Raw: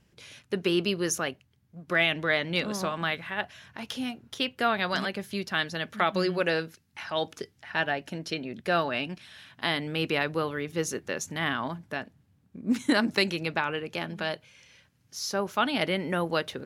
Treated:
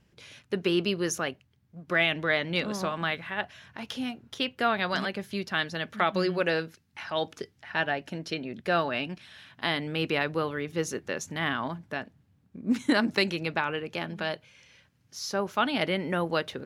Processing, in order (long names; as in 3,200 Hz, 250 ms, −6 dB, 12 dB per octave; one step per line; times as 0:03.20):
parametric band 12,000 Hz −5 dB 1.6 octaves